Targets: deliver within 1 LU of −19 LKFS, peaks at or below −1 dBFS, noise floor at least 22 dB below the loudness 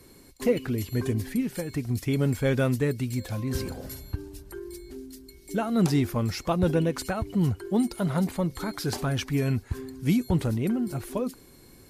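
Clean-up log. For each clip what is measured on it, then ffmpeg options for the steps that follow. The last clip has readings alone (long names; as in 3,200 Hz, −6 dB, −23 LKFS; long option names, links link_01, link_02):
integrated loudness −27.5 LKFS; sample peak −11.5 dBFS; target loudness −19.0 LKFS
→ -af "volume=8.5dB"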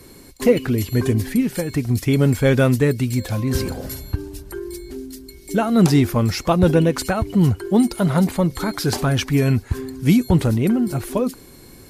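integrated loudness −19.0 LKFS; sample peak −3.0 dBFS; background noise floor −44 dBFS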